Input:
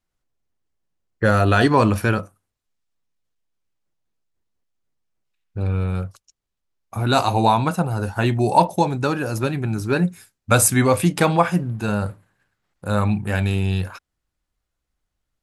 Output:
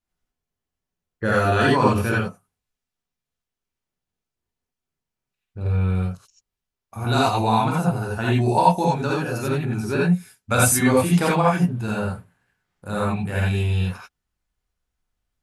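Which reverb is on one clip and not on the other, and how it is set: non-linear reverb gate 0.11 s rising, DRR -5 dB; gain -7 dB

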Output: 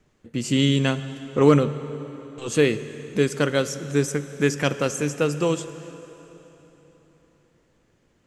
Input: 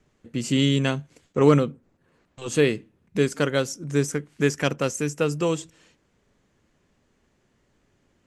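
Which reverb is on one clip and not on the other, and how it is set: plate-style reverb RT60 3.9 s, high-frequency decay 0.85×, DRR 12 dB; gain +1 dB

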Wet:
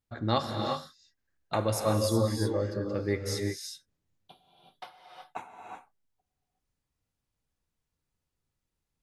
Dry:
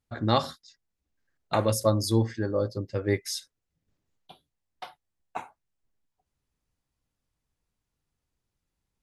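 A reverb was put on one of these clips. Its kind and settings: non-linear reverb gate 0.4 s rising, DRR 2 dB; gain -4 dB

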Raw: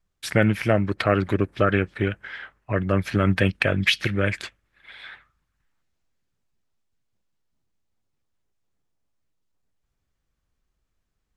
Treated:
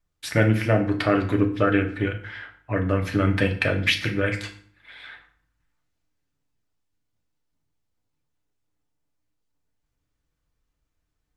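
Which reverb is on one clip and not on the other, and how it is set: FDN reverb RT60 0.53 s, low-frequency decay 1.3×, high-frequency decay 0.8×, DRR 2.5 dB; gain -2.5 dB

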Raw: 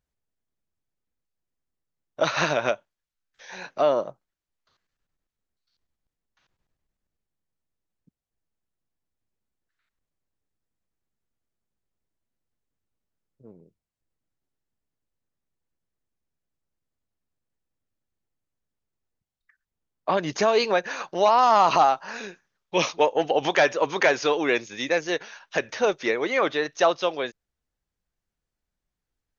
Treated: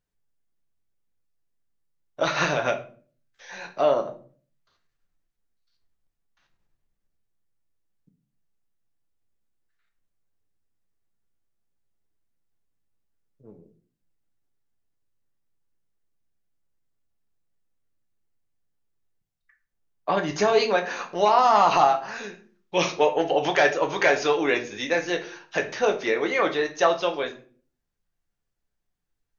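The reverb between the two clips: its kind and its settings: shoebox room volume 32 m³, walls mixed, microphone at 0.35 m; gain -1.5 dB

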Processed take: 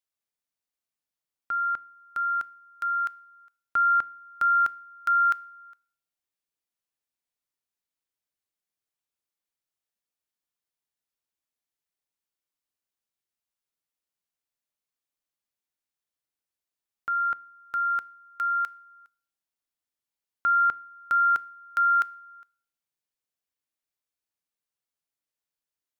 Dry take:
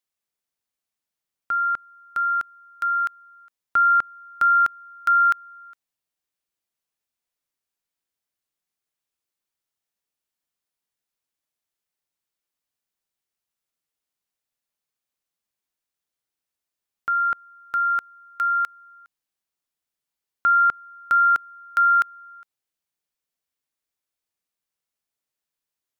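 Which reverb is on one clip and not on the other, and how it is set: FDN reverb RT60 0.51 s, low-frequency decay 1.5×, high-frequency decay 1×, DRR 19 dB; gain -5 dB

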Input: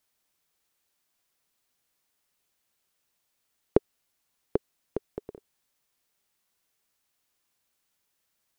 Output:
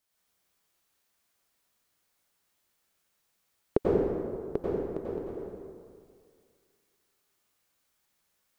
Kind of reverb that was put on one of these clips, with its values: plate-style reverb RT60 2.1 s, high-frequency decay 0.55×, pre-delay 80 ms, DRR -6.5 dB; gain -4.5 dB

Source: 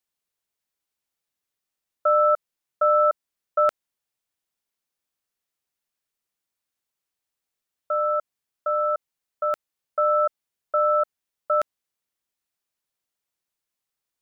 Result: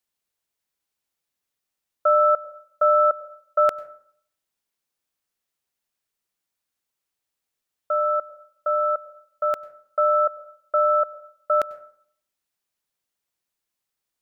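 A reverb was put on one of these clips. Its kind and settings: plate-style reverb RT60 0.61 s, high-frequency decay 0.45×, pre-delay 85 ms, DRR 18 dB; gain +1.5 dB

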